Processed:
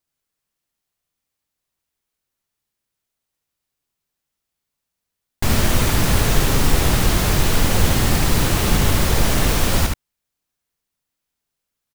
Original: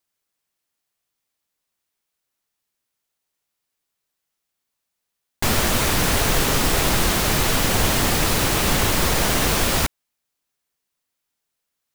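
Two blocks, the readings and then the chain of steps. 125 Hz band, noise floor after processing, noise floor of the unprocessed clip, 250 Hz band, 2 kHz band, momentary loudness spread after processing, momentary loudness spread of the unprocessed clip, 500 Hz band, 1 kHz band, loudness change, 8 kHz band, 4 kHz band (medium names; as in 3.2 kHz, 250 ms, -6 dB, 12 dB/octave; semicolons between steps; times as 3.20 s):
+5.5 dB, -82 dBFS, -80 dBFS, +2.5 dB, -1.5 dB, 3 LU, 2 LU, 0.0 dB, -1.0 dB, +0.5 dB, -1.5 dB, -1.5 dB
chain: bass shelf 210 Hz +9 dB; on a send: delay 72 ms -4 dB; on the sum: trim -3 dB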